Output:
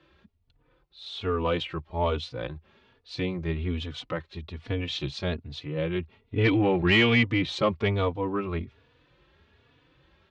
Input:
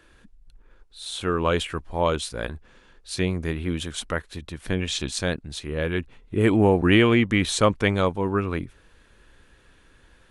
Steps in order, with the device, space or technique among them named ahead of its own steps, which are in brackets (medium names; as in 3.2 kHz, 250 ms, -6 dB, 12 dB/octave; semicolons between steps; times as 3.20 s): 6.38–7.23 s: high-order bell 2.5 kHz +8.5 dB; barber-pole flanger into a guitar amplifier (endless flanger 3.4 ms +1.2 Hz; saturation -12.5 dBFS, distortion -16 dB; cabinet simulation 80–4400 Hz, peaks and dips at 82 Hz +5 dB, 140 Hz +6 dB, 200 Hz -4 dB, 1.6 kHz -7 dB)